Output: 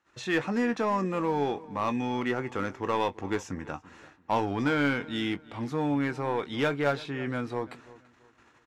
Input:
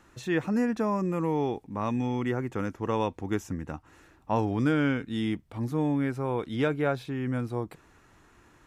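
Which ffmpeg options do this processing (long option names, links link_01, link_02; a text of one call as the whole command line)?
ffmpeg -i in.wav -filter_complex "[0:a]highpass=49,agate=range=-20dB:threshold=-57dB:ratio=16:detection=peak,lowpass=5800,lowshelf=frequency=400:gain=-11,asplit=2[link_01][link_02];[link_02]aeval=exprs='0.0335*(abs(mod(val(0)/0.0335+3,4)-2)-1)':channel_layout=same,volume=-8.5dB[link_03];[link_01][link_03]amix=inputs=2:normalize=0,asplit=2[link_04][link_05];[link_05]adelay=21,volume=-11.5dB[link_06];[link_04][link_06]amix=inputs=2:normalize=0,asplit=2[link_07][link_08];[link_08]adelay=336,lowpass=frequency=3500:poles=1,volume=-19.5dB,asplit=2[link_09][link_10];[link_10]adelay=336,lowpass=frequency=3500:poles=1,volume=0.32,asplit=2[link_11][link_12];[link_12]adelay=336,lowpass=frequency=3500:poles=1,volume=0.32[link_13];[link_09][link_11][link_13]amix=inputs=3:normalize=0[link_14];[link_07][link_14]amix=inputs=2:normalize=0,volume=3dB" out.wav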